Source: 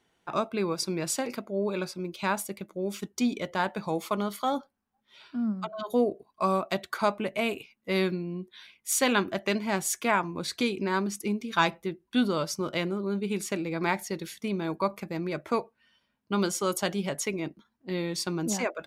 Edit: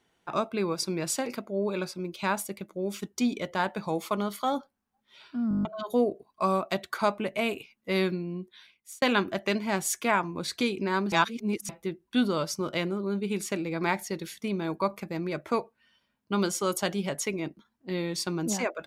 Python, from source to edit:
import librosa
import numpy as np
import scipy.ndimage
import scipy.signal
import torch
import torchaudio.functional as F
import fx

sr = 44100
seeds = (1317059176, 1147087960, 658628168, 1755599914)

y = fx.edit(x, sr, fx.stutter_over(start_s=5.49, slice_s=0.02, count=8),
    fx.fade_out_span(start_s=8.38, length_s=0.64),
    fx.reverse_span(start_s=11.12, length_s=0.57), tone=tone)